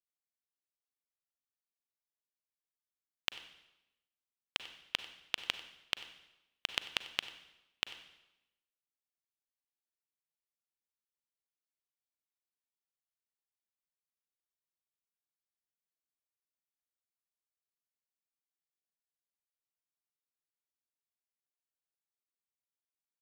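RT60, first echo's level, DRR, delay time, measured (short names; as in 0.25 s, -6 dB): 0.95 s, -19.0 dB, 11.0 dB, 94 ms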